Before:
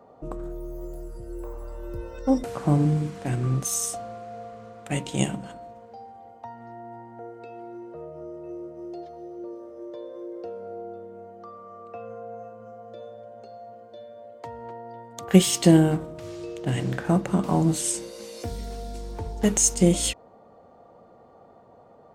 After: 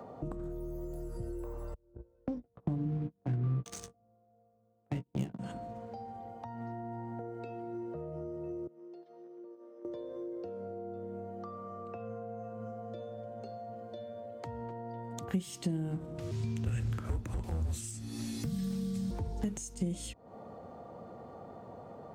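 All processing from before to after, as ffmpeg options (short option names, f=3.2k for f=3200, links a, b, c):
-filter_complex "[0:a]asettb=1/sr,asplit=3[a][b][c];[a]atrim=end=1.744[d];[b]atrim=start=1.74:end=5.39,asetpts=PTS-STARTPTS,afade=t=in:d=0.004:c=qsin,afade=t=out:st=3.646:d=0.004:c=qsin,agate=range=-34dB:threshold=-29dB:ratio=16:release=100:detection=peak,adynamicsmooth=sensitivity=5:basefreq=620,asplit=2[e][f];[f]adelay=17,volume=-10dB[g];[e][g]amix=inputs=2:normalize=0,atrim=end_sample=160965[h];[c]atrim=start=5.386[i];[d][h]acrossfade=d=0.004:c1=hsin:c2=qsin[j];[j][i]acrossfade=d=0.004:c1=qsin:c2=hsin,asettb=1/sr,asplit=3[k][l][m];[k]atrim=end=8.674[n];[l]atrim=start=8.67:end=9.85,asetpts=PTS-STARTPTS,afade=t=in:d=0.004:c=qsin,afade=t=out:st=1.176:d=0.004:c=qsin,agate=range=-17dB:threshold=-37dB:ratio=16:release=100:detection=peak,acompressor=threshold=-53dB:ratio=6:attack=3.2:release=140:knee=1:detection=peak,highpass=f=190:w=0.5412,highpass=f=190:w=1.3066,equalizer=f=680:t=q:w=4:g=-6,equalizer=f=4.6k:t=q:w=4:g=-3,equalizer=f=6.9k:t=q:w=4:g=-8,lowpass=f=7.8k:w=0.5412,lowpass=f=7.8k:w=1.3066[o];[m]atrim=start=9.846[p];[n][o]acrossfade=d=0.004:c1=hsin:c2=qsin[q];[q][p]acrossfade=d=0.004:c1=qsin:c2=hsin,asettb=1/sr,asplit=3[r][s][t];[r]atrim=end=16.314[u];[s]atrim=start=16.31:end=19.11,asetpts=PTS-STARTPTS,afade=t=in:d=0.004:c=qsin,afade=t=out:st=2.796:d=0.004:c=qsin,asoftclip=type=hard:threshold=-17dB,highshelf=f=10k:g=6.5,afreqshift=-240[v];[t]atrim=start=19.106[w];[u][v]acrossfade=d=0.004:c1=hsin:c2=qsin[x];[x][w]acrossfade=d=0.004:c1=qsin:c2=hsin,acompressor=threshold=-39dB:ratio=5,highpass=61,acrossover=split=260[y][z];[z]acompressor=threshold=-60dB:ratio=2[aa];[y][aa]amix=inputs=2:normalize=0,volume=8.5dB"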